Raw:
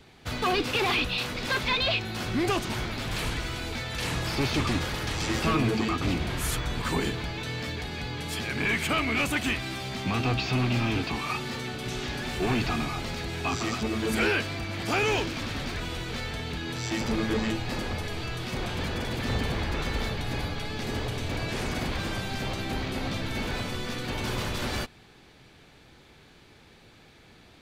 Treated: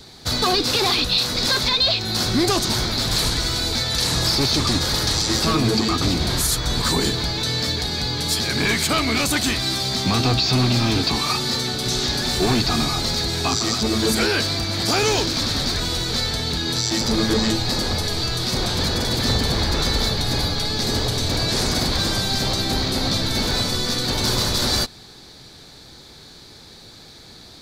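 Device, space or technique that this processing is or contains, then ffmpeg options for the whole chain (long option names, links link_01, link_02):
over-bright horn tweeter: -af "highshelf=frequency=3400:width_type=q:width=3:gain=6.5,alimiter=limit=-17.5dB:level=0:latency=1:release=167,volume=8dB"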